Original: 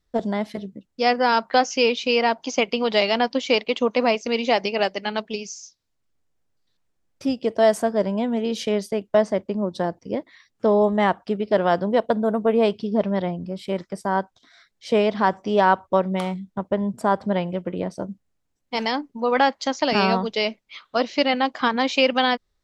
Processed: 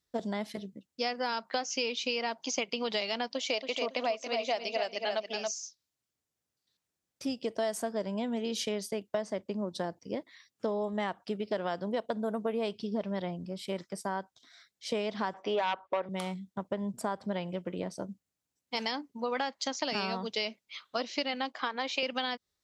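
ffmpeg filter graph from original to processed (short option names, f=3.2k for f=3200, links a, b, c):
-filter_complex "[0:a]asettb=1/sr,asplit=3[a][b][c];[a]atrim=end=3.324[d];[b]atrim=start=3.32:end=5.51,asetpts=PTS-STARTPTS,afade=t=in:d=0.004:c=qsin,afade=t=out:st=2.186:d=0.004:c=qsin,highpass=f=340:p=1,equalizer=f=660:w=6.4:g=12,asplit=2[e][f];[f]adelay=278,lowpass=f=4.4k:p=1,volume=-6.5dB,asplit=2[g][h];[h]adelay=278,lowpass=f=4.4k:p=1,volume=0.24,asplit=2[i][j];[j]adelay=278,lowpass=f=4.4k:p=1,volume=0.24[k];[e][g][i][k]amix=inputs=4:normalize=0,atrim=end_sample=96579[l];[c]atrim=start=5.506[m];[d][l]acrossfade=d=0.004:c1=hsin:c2=qsin[n];[n][m]acrossfade=d=0.004:c1=qsin:c2=hsin,asettb=1/sr,asplit=3[o][p][q];[o]atrim=end=15.344[r];[p]atrim=start=15.34:end=16.09,asetpts=PTS-STARTPTS,afade=t=in:d=0.004:c=qsin,afade=t=out:st=0.746:d=0.004:c=qsin,acrossover=split=360 3500:gain=0.158 1 0.0794[s][t][u];[s][t][u]amix=inputs=3:normalize=0,aeval=exprs='0.562*sin(PI/2*1.78*val(0)/0.562)':c=same[v];[q]atrim=start=16.086[w];[r][v]acrossfade=d=0.004:c1=hsin:c2=qsin[x];[x][w]acrossfade=d=0.004:c1=qsin:c2=hsin,asettb=1/sr,asplit=3[y][z][aa];[y]atrim=end=21.524[ab];[z]atrim=start=21.52:end=22.03,asetpts=PTS-STARTPTS,afade=t=in:d=0.004:c=qsin,afade=t=out:st=0.506:d=0.004:c=qsin,highpass=370,aemphasis=mode=reproduction:type=50fm[ac];[aa]atrim=start=22.026[ad];[ab][ac]acrossfade=d=0.004:c1=hsin:c2=qsin[ae];[ae][ad]acrossfade=d=0.004:c1=qsin:c2=hsin,highpass=83,highshelf=f=3.1k:g=10,acompressor=threshold=-20dB:ratio=6,volume=-8.5dB"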